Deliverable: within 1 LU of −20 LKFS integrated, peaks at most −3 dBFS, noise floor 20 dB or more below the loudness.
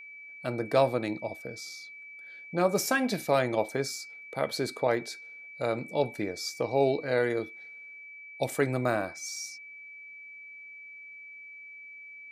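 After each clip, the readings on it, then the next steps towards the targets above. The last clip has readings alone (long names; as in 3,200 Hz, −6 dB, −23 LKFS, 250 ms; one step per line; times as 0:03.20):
interfering tone 2,300 Hz; level of the tone −44 dBFS; integrated loudness −30.0 LKFS; sample peak −10.0 dBFS; target loudness −20.0 LKFS
→ notch filter 2,300 Hz, Q 30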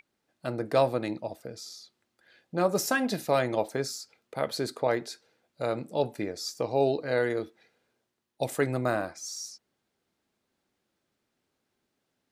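interfering tone none found; integrated loudness −30.0 LKFS; sample peak −10.0 dBFS; target loudness −20.0 LKFS
→ level +10 dB
brickwall limiter −3 dBFS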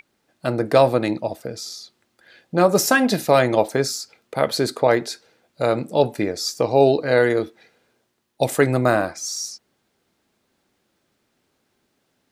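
integrated loudness −20.5 LKFS; sample peak −3.0 dBFS; background noise floor −70 dBFS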